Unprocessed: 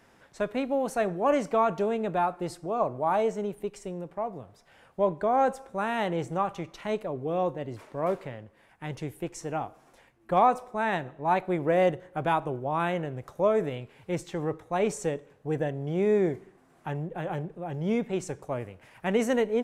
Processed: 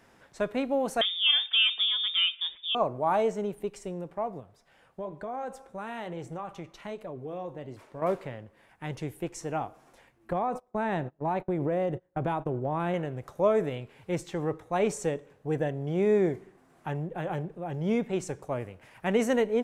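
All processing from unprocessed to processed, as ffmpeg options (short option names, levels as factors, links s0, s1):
-filter_complex "[0:a]asettb=1/sr,asplit=3[s0][s1][s2];[s0]atrim=end=1.014[s3];[s1]atrim=start=1.01:end=2.75,asetpts=PTS-STARTPTS,afade=t=in:d=0.004:c=qsin,afade=t=out:st=1.736:d=0.004:c=qsin,highpass=46,lowpass=f=3200:t=q:w=0.5098,lowpass=f=3200:t=q:w=0.6013,lowpass=f=3200:t=q:w=0.9,lowpass=f=3200:t=q:w=2.563,afreqshift=-3800[s4];[s2]atrim=start=2.746[s5];[s3][s4]acrossfade=d=0.004:c1=hsin:c2=qsin[s6];[s6][s5]acrossfade=d=0.004:c1=qsin:c2=hsin,asettb=1/sr,asplit=3[s7][s8][s9];[s7]atrim=end=4.404[s10];[s8]atrim=start=4.4:end=8.02,asetpts=PTS-STARTPTS,afade=t=in:d=0.004:c=qsin,afade=t=out:st=3.616:d=0.004:c=qsin,flanger=delay=0.2:depth=6.5:regen=-73:speed=1.1:shape=triangular,acompressor=threshold=0.02:ratio=3:attack=3.2:release=140:knee=1:detection=peak[s11];[s9]atrim=start=8.016[s12];[s10][s11]acrossfade=d=0.004:c1=hsin:c2=qsin[s13];[s13][s12]acrossfade=d=0.004:c1=qsin:c2=hsin,asettb=1/sr,asplit=3[s14][s15][s16];[s14]atrim=end=10.324[s17];[s15]atrim=start=10.32:end=12.94,asetpts=PTS-STARTPTS,afade=t=in:d=0.004:c=qsin,afade=t=out:st=2.616:d=0.004:c=qsin,tiltshelf=f=880:g=5,acompressor=threshold=0.0631:ratio=12:attack=3.2:release=140:knee=1:detection=peak,agate=range=0.0631:threshold=0.0141:ratio=16:release=100:detection=peak[s18];[s16]atrim=start=12.936[s19];[s17][s18]acrossfade=d=0.004:c1=hsin:c2=qsin[s20];[s20][s19]acrossfade=d=0.004:c1=qsin:c2=hsin"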